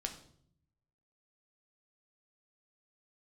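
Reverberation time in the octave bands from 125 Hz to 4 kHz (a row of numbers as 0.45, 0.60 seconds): 1.2, 1.0, 0.70, 0.55, 0.50, 0.50 seconds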